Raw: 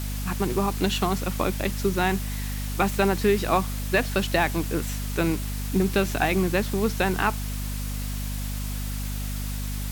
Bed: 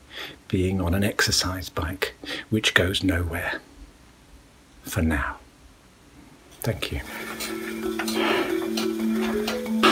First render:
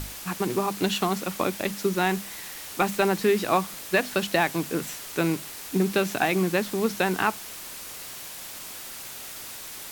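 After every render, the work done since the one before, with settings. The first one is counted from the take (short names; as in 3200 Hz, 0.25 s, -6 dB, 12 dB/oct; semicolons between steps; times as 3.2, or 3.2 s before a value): notches 50/100/150/200/250 Hz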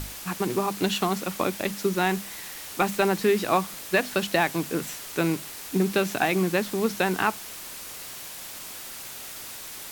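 nothing audible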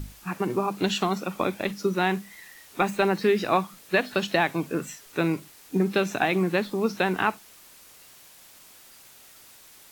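noise print and reduce 12 dB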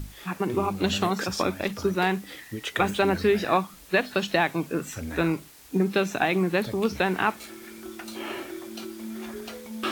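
add bed -12 dB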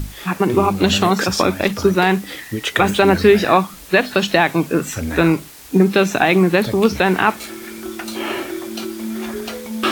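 gain +10.5 dB; limiter -1 dBFS, peak gain reduction 3 dB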